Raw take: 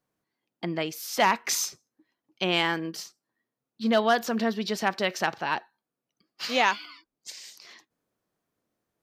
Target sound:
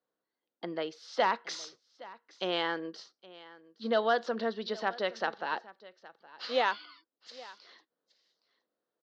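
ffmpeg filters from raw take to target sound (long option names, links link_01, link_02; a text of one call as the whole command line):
ffmpeg -i in.wav -af "highpass=270,equalizer=frequency=500:width_type=q:width=4:gain=7,equalizer=frequency=1400:width_type=q:width=4:gain=3,equalizer=frequency=2400:width_type=q:width=4:gain=-9,equalizer=frequency=4000:width_type=q:width=4:gain=3,lowpass=frequency=4600:width=0.5412,lowpass=frequency=4600:width=1.3066,aecho=1:1:817:0.1,volume=-6dB" out.wav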